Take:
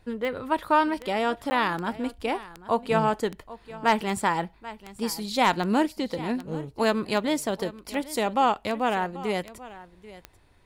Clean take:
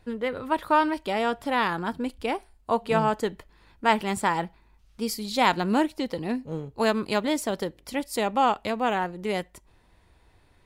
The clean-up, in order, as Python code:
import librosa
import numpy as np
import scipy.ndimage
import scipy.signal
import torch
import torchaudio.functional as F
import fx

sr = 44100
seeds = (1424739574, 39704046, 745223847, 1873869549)

y = fx.fix_declip(x, sr, threshold_db=-10.5)
y = fx.fix_declick_ar(y, sr, threshold=10.0)
y = fx.fix_interpolate(y, sr, at_s=(1.5,), length_ms=10.0)
y = fx.fix_echo_inverse(y, sr, delay_ms=787, level_db=-17.5)